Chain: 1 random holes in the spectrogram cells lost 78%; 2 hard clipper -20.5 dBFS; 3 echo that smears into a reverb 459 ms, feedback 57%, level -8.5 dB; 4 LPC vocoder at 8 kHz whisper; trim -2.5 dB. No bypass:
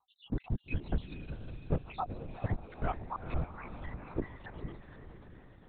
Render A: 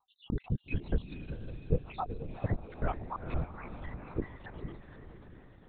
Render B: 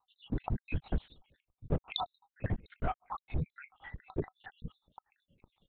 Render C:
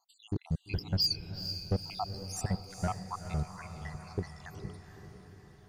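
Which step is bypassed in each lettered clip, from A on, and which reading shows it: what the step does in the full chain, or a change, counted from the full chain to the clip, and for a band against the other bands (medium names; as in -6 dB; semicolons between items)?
2, distortion -12 dB; 3, crest factor change +1.5 dB; 4, 4 kHz band +22.5 dB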